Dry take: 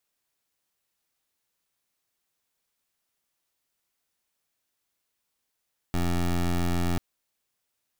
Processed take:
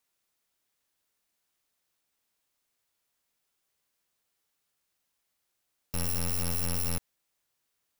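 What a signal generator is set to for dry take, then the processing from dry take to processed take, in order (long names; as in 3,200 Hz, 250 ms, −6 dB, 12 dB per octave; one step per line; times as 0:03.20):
pulse wave 87.2 Hz, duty 17% −25 dBFS 1.04 s
samples in bit-reversed order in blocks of 128 samples
brickwall limiter −29 dBFS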